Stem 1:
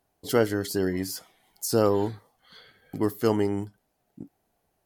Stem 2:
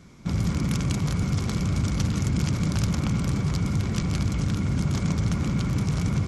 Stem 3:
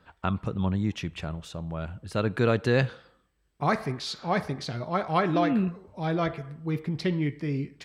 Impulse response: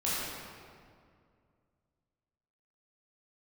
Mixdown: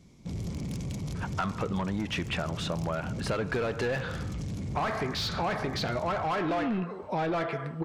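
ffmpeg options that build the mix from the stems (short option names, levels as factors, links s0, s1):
-filter_complex "[1:a]equalizer=f=1400:t=o:w=0.78:g=-12.5,asoftclip=type=tanh:threshold=0.0631,volume=0.501[s0];[2:a]asplit=2[s1][s2];[s2]highpass=f=720:p=1,volume=17.8,asoftclip=type=tanh:threshold=0.299[s3];[s1][s3]amix=inputs=2:normalize=0,lowpass=f=1900:p=1,volume=0.501,adelay=1150,volume=0.841[s4];[s0][s4]amix=inputs=2:normalize=0,acompressor=threshold=0.0398:ratio=5"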